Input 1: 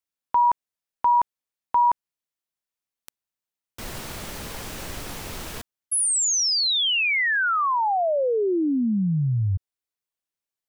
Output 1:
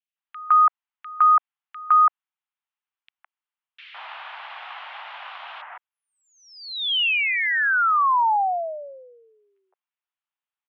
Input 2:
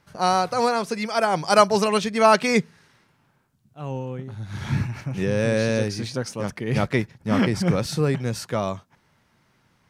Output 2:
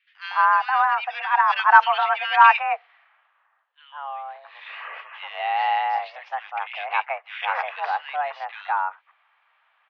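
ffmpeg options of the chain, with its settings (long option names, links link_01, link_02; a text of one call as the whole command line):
ffmpeg -i in.wav -filter_complex "[0:a]acrossover=split=1800[link_01][link_02];[link_01]adelay=160[link_03];[link_03][link_02]amix=inputs=2:normalize=0,highpass=frequency=500:width_type=q:width=0.5412,highpass=frequency=500:width_type=q:width=1.307,lowpass=frequency=2900:width_type=q:width=0.5176,lowpass=frequency=2900:width_type=q:width=0.7071,lowpass=frequency=2900:width_type=q:width=1.932,afreqshift=280,volume=4dB" out.wav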